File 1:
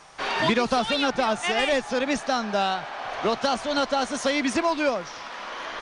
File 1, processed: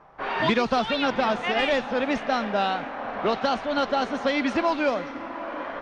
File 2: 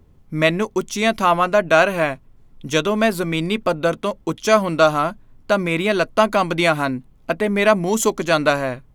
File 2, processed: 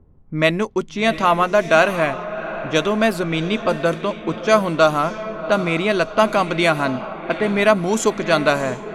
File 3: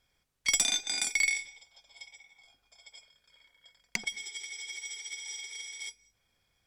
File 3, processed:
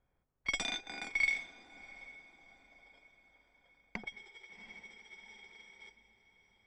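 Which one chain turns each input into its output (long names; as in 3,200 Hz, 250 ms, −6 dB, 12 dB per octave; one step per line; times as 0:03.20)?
on a send: feedback delay with all-pass diffusion 738 ms, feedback 45%, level −12 dB
on the sum: low-pass that shuts in the quiet parts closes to 1,100 Hz, open at −12.5 dBFS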